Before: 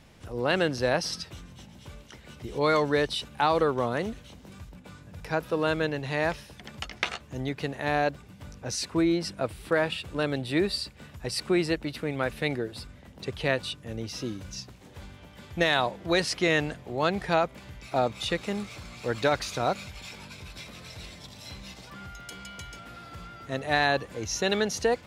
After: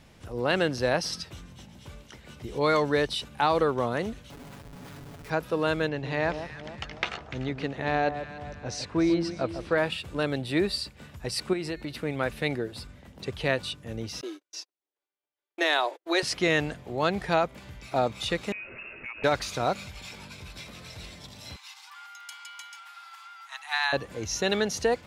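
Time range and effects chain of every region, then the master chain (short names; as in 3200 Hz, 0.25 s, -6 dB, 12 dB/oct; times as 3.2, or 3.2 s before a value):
4.3–5.3 high shelf 3900 Hz -7 dB + Schmitt trigger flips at -57.5 dBFS + comb 7.1 ms, depth 62%
5.88–9.78 air absorption 85 m + echo with dull and thin repeats by turns 0.147 s, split 1200 Hz, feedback 69%, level -9 dB
11.53–12.01 de-hum 359.2 Hz, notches 12 + compressor 3:1, threshold -30 dBFS
14.21–16.23 steep high-pass 300 Hz 72 dB/oct + gate -43 dBFS, range -44 dB + notch 510 Hz, Q 10
18.52–19.24 inverted band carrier 2700 Hz + compressor 4:1, threshold -36 dBFS
21.56–23.93 steep high-pass 790 Hz 96 dB/oct + notch 1800 Hz, Q 20
whole clip: dry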